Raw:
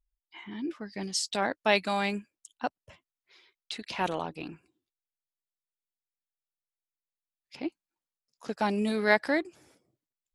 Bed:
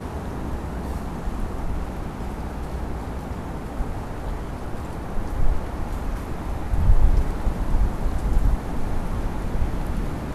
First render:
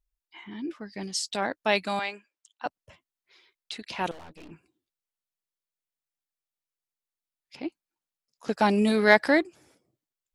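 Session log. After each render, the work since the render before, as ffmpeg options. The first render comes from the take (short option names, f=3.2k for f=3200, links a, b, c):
-filter_complex "[0:a]asettb=1/sr,asplit=3[a][b][c];[a]atrim=end=1.994[d];[b]atrim=start=1.99:end=2.66,asetpts=PTS-STARTPTS,afade=t=in:d=0.004:c=qsin,afade=t=out:st=0.666:d=0.004:c=qsin,highpass=570,lowpass=5.3k[e];[c]atrim=start=2.656[f];[d][e]acrossfade=d=0.004:c1=hsin:c2=qsin[g];[g][f]acrossfade=d=0.004:c1=qsin:c2=hsin,asettb=1/sr,asplit=3[h][i][j];[h]atrim=end=4.114[k];[i]atrim=start=4.11:end=4.51,asetpts=PTS-STARTPTS,afade=t=in:d=0.004:c=qsin,afade=t=out:st=0.396:d=0.004:c=qsin,aeval=exprs='(tanh(158*val(0)+0.75)-tanh(0.75))/158':c=same[l];[j]atrim=start=4.506[m];[k][l]acrossfade=d=0.004:c1=hsin:c2=qsin[n];[n][m]acrossfade=d=0.004:c1=qsin:c2=hsin,asettb=1/sr,asplit=3[o][p][q];[o]atrim=end=8.474[r];[p]atrim=start=8.47:end=9.45,asetpts=PTS-STARTPTS,afade=t=in:d=0.004:c=qsin,afade=t=out:st=0.976:d=0.004:c=qsin,acontrast=50[s];[q]atrim=start=9.446[t];[r][s]acrossfade=d=0.004:c1=hsin:c2=qsin[u];[u][t]acrossfade=d=0.004:c1=qsin:c2=hsin"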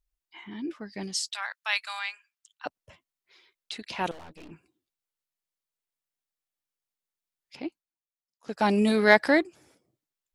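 -filter_complex "[0:a]asplit=3[a][b][c];[a]afade=t=out:st=1.29:d=0.02[d];[b]highpass=f=1.1k:w=0.5412,highpass=f=1.1k:w=1.3066,afade=t=in:st=1.29:d=0.02,afade=t=out:st=2.65:d=0.02[e];[c]afade=t=in:st=2.65:d=0.02[f];[d][e][f]amix=inputs=3:normalize=0,asplit=3[g][h][i];[g]atrim=end=7.94,asetpts=PTS-STARTPTS,afade=t=out:st=7.61:d=0.33:silence=0.16788[j];[h]atrim=start=7.94:end=8.39,asetpts=PTS-STARTPTS,volume=-15.5dB[k];[i]atrim=start=8.39,asetpts=PTS-STARTPTS,afade=t=in:d=0.33:silence=0.16788[l];[j][k][l]concat=n=3:v=0:a=1"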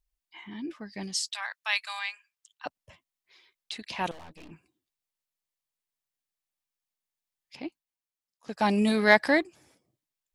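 -af "equalizer=f=400:w=1.4:g=-4,bandreject=f=1.4k:w=11"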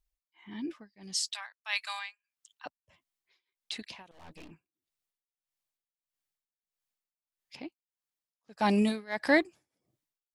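-af "tremolo=f=1.6:d=0.96"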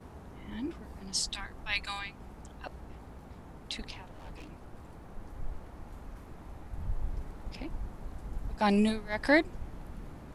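-filter_complex "[1:a]volume=-18dB[a];[0:a][a]amix=inputs=2:normalize=0"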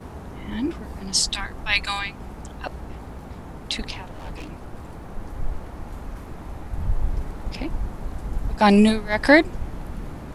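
-af "volume=11dB,alimiter=limit=-3dB:level=0:latency=1"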